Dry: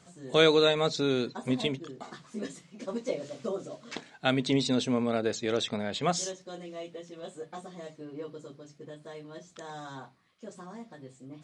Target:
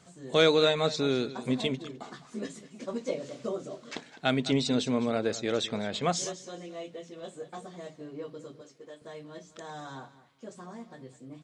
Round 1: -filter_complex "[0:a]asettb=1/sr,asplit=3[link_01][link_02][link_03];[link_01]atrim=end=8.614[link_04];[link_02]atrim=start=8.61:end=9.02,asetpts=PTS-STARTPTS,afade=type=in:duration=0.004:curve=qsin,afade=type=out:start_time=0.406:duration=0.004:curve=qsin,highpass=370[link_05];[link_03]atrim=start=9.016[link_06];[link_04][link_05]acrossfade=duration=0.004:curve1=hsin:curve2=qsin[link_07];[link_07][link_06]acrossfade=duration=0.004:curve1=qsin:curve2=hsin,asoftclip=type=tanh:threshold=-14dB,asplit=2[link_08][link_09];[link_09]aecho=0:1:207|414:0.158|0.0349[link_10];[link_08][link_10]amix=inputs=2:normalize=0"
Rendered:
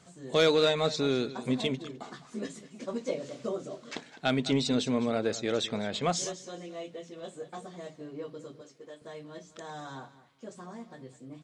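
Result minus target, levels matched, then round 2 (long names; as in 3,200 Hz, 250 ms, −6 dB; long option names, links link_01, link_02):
soft clipping: distortion +12 dB
-filter_complex "[0:a]asettb=1/sr,asplit=3[link_01][link_02][link_03];[link_01]atrim=end=8.614[link_04];[link_02]atrim=start=8.61:end=9.02,asetpts=PTS-STARTPTS,afade=type=in:duration=0.004:curve=qsin,afade=type=out:start_time=0.406:duration=0.004:curve=qsin,highpass=370[link_05];[link_03]atrim=start=9.016[link_06];[link_04][link_05]acrossfade=duration=0.004:curve1=hsin:curve2=qsin[link_07];[link_07][link_06]acrossfade=duration=0.004:curve1=qsin:curve2=hsin,asoftclip=type=tanh:threshold=-6.5dB,asplit=2[link_08][link_09];[link_09]aecho=0:1:207|414:0.158|0.0349[link_10];[link_08][link_10]amix=inputs=2:normalize=0"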